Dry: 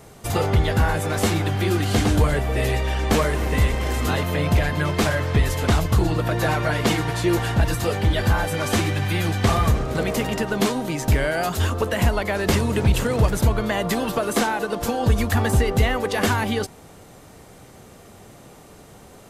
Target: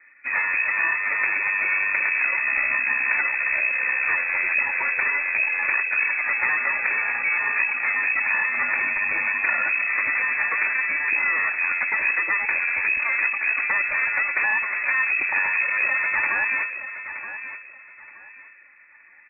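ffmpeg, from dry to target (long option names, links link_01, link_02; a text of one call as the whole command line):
ffmpeg -i in.wav -af "afftdn=noise_reduction=13:noise_floor=-29,equalizer=frequency=760:width=2.2:gain=15,bandreject=frequency=1900:width=7.3,aecho=1:1:3.5:0.61,acompressor=threshold=-17dB:ratio=6,aresample=8000,aeval=exprs='clip(val(0),-1,0.0266)':channel_layout=same,aresample=44100,aecho=1:1:923|1846|2769:0.282|0.0733|0.0191,lowpass=frequency=2200:width_type=q:width=0.5098,lowpass=frequency=2200:width_type=q:width=0.6013,lowpass=frequency=2200:width_type=q:width=0.9,lowpass=frequency=2200:width_type=q:width=2.563,afreqshift=-2600" out.wav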